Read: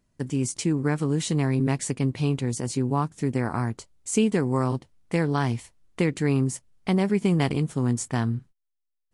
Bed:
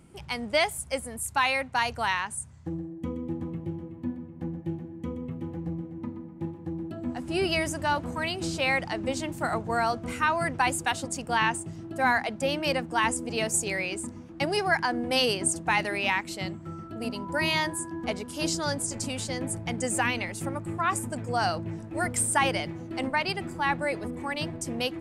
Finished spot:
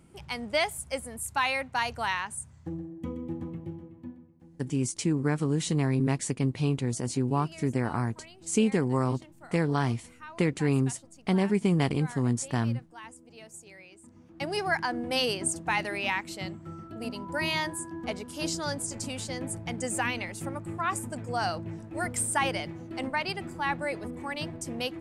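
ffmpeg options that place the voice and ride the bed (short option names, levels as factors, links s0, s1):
-filter_complex "[0:a]adelay=4400,volume=0.75[s0];[1:a]volume=5.62,afade=t=out:st=3.44:d=0.99:silence=0.125893,afade=t=in:st=14.01:d=0.61:silence=0.133352[s1];[s0][s1]amix=inputs=2:normalize=0"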